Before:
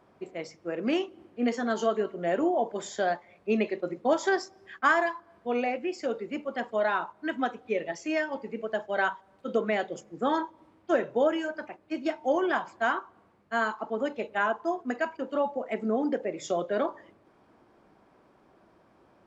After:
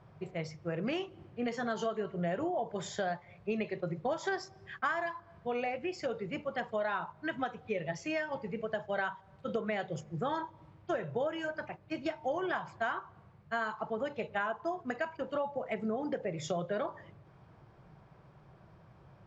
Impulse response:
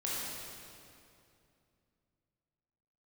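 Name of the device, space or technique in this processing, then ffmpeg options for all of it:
jukebox: -af "lowpass=6.3k,lowshelf=f=190:t=q:w=3:g=9.5,acompressor=threshold=-31dB:ratio=4"

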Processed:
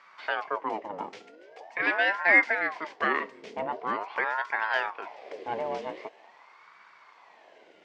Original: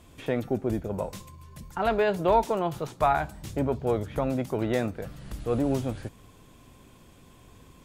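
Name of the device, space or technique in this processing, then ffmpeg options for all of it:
voice changer toy: -af "aeval=exprs='val(0)*sin(2*PI*770*n/s+770*0.6/0.44*sin(2*PI*0.44*n/s))':c=same,highpass=480,equalizer=f=540:t=q:w=4:g=-4,equalizer=f=780:t=q:w=4:g=-4,equalizer=f=1.3k:t=q:w=4:g=-7,equalizer=f=2.1k:t=q:w=4:g=6,equalizer=f=3.9k:t=q:w=4:g=-6,lowpass=f=4.7k:w=0.5412,lowpass=f=4.7k:w=1.3066,volume=4dB"

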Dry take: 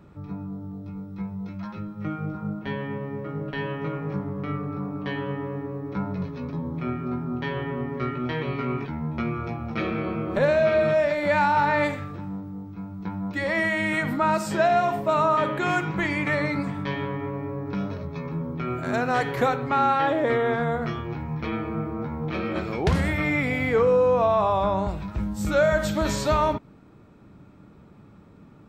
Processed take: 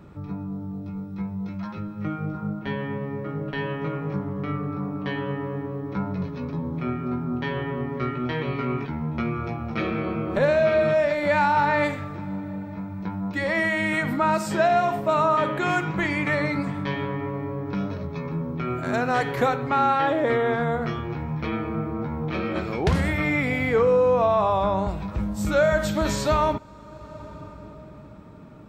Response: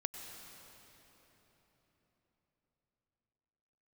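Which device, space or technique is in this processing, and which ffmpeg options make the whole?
ducked reverb: -filter_complex "[0:a]asplit=3[a][b][c];[1:a]atrim=start_sample=2205[d];[b][d]afir=irnorm=-1:irlink=0[e];[c]apad=whole_len=1264982[f];[e][f]sidechaincompress=threshold=-36dB:ratio=10:attack=5.3:release=597,volume=-3.5dB[g];[a][g]amix=inputs=2:normalize=0"

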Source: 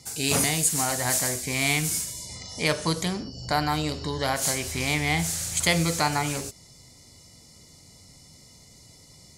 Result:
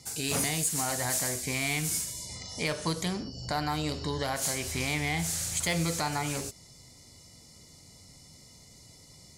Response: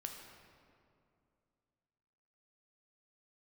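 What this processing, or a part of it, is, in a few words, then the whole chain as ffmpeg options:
soft clipper into limiter: -af "asoftclip=type=tanh:threshold=-13.5dB,alimiter=limit=-18dB:level=0:latency=1:release=244,volume=-2dB"

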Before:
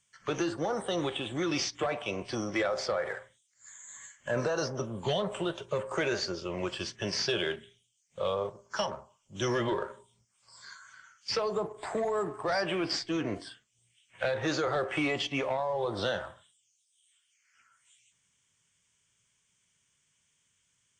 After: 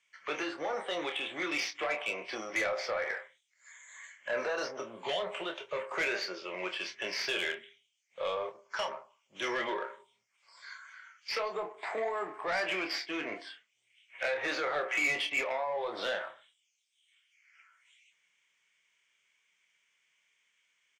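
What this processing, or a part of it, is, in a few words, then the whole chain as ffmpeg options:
intercom: -filter_complex "[0:a]highpass=470,lowpass=4.7k,equalizer=f=2.2k:t=o:w=0.55:g=11,asoftclip=type=tanh:threshold=-24dB,asplit=2[a][b];[b]adelay=27,volume=-7dB[c];[a][c]amix=inputs=2:normalize=0,volume=-1.5dB"

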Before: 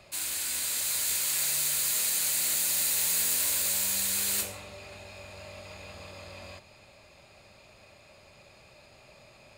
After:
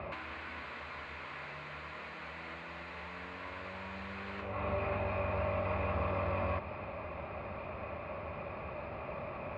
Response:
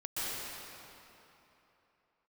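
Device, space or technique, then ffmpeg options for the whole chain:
bass amplifier: -af "lowshelf=f=160:g=3.5,acompressor=threshold=-43dB:ratio=5,highpass=70,equalizer=f=75:t=q:w=4:g=5,equalizer=f=120:t=q:w=4:g=-7,equalizer=f=1.1k:t=q:w=4:g=6,equalizer=f=1.7k:t=q:w=4:g=-3,lowpass=f=2.1k:w=0.5412,lowpass=f=2.1k:w=1.3066,volume=14dB"

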